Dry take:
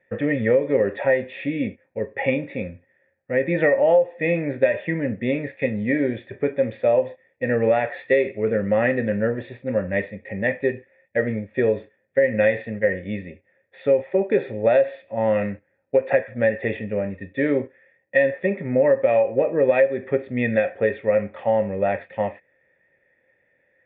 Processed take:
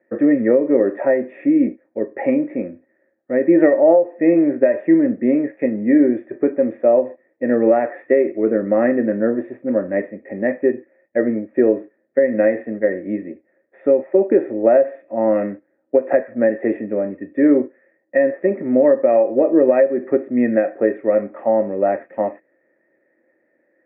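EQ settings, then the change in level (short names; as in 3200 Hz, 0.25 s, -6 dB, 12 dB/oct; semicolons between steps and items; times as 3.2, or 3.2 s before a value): air absorption 250 m; speaker cabinet 220–2000 Hz, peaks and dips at 240 Hz +9 dB, 350 Hz +6 dB, 640 Hz +7 dB, 1200 Hz +5 dB; bell 320 Hz +12 dB 0.29 oct; 0.0 dB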